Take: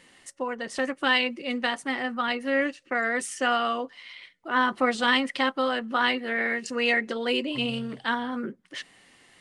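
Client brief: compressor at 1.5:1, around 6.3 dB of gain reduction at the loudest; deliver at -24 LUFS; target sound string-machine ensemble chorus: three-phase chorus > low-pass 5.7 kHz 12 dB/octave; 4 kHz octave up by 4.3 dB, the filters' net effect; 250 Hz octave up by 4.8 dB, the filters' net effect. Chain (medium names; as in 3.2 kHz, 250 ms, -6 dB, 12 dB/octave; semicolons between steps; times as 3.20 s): peaking EQ 250 Hz +5 dB; peaking EQ 4 kHz +7 dB; compression 1.5:1, threshold -33 dBFS; three-phase chorus; low-pass 5.7 kHz 12 dB/octave; trim +8.5 dB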